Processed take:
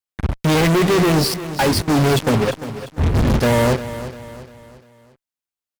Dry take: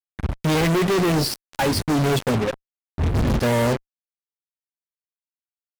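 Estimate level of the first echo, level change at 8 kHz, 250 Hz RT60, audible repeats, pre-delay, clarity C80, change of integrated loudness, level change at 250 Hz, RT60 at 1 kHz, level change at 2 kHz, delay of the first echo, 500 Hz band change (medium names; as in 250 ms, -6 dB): -13.0 dB, +4.0 dB, no reverb, 4, no reverb, no reverb, +4.0 dB, +4.0 dB, no reverb, +4.0 dB, 348 ms, +4.0 dB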